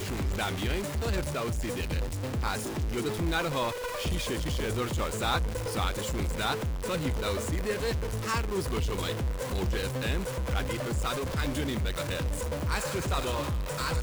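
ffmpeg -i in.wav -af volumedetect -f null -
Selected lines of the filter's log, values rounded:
mean_volume: -30.0 dB
max_volume: -16.2 dB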